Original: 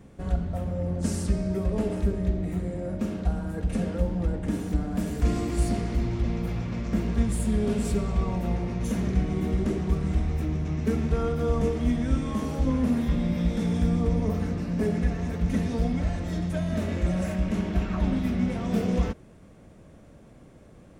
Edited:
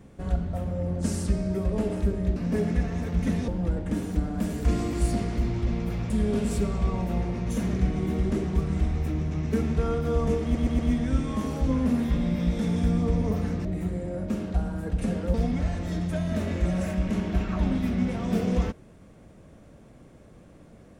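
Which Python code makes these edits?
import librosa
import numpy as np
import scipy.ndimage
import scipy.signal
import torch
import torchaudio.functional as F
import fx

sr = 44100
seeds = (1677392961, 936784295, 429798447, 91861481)

y = fx.edit(x, sr, fx.swap(start_s=2.36, length_s=1.69, other_s=14.63, other_length_s=1.12),
    fx.cut(start_s=6.67, length_s=0.77),
    fx.stutter(start_s=11.77, slice_s=0.12, count=4), tone=tone)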